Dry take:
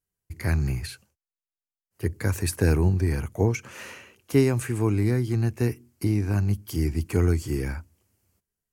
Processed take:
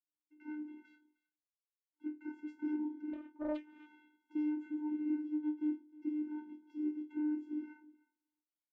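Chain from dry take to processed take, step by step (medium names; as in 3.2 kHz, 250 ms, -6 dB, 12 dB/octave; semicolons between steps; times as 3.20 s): Savitzky-Golay filter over 25 samples; chord resonator D#2 fifth, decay 0.23 s; vocoder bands 16, square 302 Hz; delay 310 ms -21.5 dB; 3.13–3.87 s: loudspeaker Doppler distortion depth 0.73 ms; trim -3 dB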